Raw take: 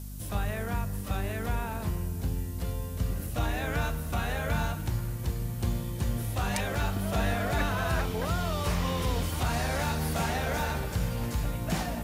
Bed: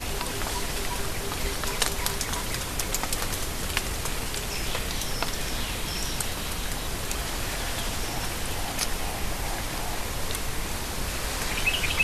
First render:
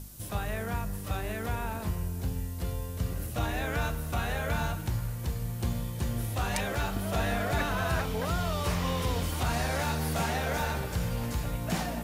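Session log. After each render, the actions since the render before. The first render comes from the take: de-hum 50 Hz, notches 7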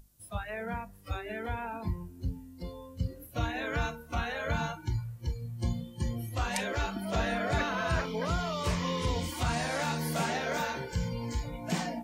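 noise print and reduce 19 dB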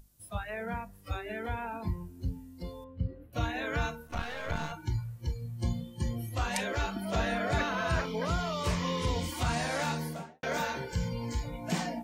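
2.84–3.33 s: distance through air 480 m; 4.07–4.72 s: partial rectifier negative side -12 dB; 9.86–10.43 s: studio fade out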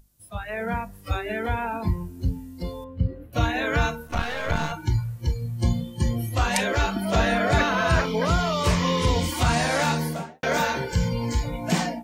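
level rider gain up to 9 dB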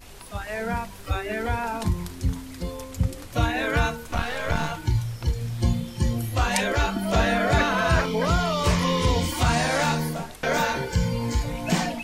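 add bed -14.5 dB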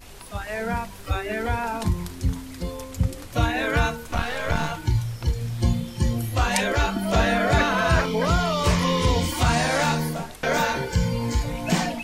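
trim +1 dB

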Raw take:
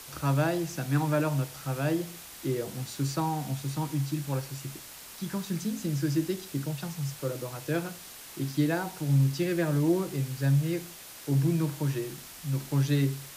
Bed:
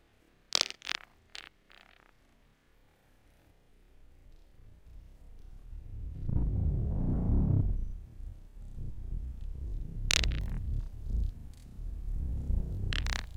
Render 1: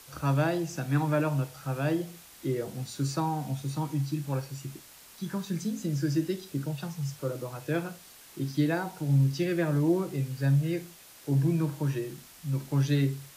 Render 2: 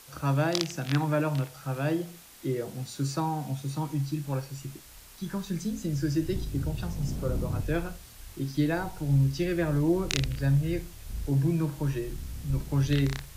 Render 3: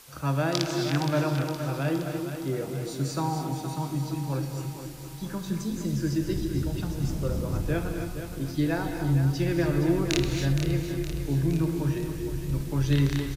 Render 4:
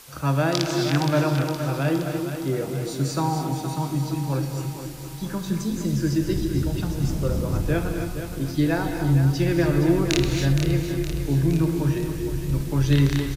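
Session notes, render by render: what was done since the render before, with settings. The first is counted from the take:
noise print and reduce 6 dB
add bed -3.5 dB
on a send: feedback delay 467 ms, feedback 54%, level -9.5 dB; on the sum: gated-style reverb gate 300 ms rising, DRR 5.5 dB
trim +4.5 dB; peak limiter -3 dBFS, peak gain reduction 2 dB

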